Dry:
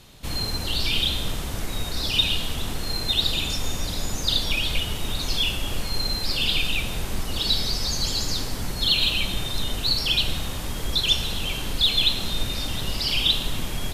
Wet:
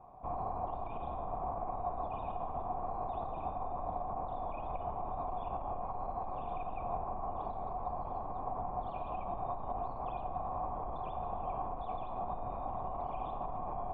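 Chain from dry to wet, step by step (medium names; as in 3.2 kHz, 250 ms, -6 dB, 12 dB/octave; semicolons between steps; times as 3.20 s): peaking EQ 3.1 kHz -14 dB 1.7 oct; peak limiter -23 dBFS, peak gain reduction 9.5 dB; cascade formant filter a; trim +15.5 dB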